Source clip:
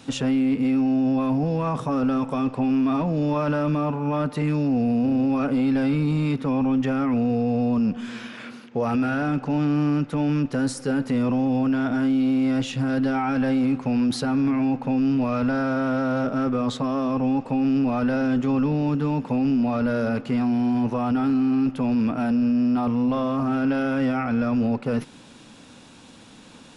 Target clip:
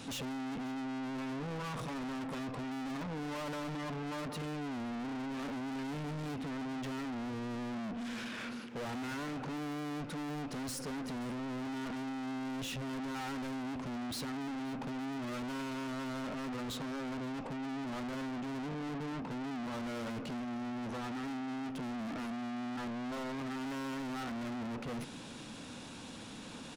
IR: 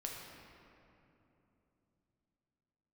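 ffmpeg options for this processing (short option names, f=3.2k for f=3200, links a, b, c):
-filter_complex "[0:a]asettb=1/sr,asplit=3[a][b][c];[a]atrim=end=17.474[d];[b]atrim=start=17.47:end=19.7,asetpts=PTS-STARTPTS,afade=t=in:d=0.004:c=qsin,afade=t=out:st=2.226:d=0.004:c=qsin,lowpass=f=2.3k:p=1[e];[c]atrim=start=19.696[f];[d][e]acrossfade=d=0.004:c1=hsin:c2=qsin[g];[g][f]acrossfade=d=0.004:c1=qsin:c2=hsin,asoftclip=type=tanh:threshold=-39.5dB,aecho=1:1:529:0.0708,volume=1dB"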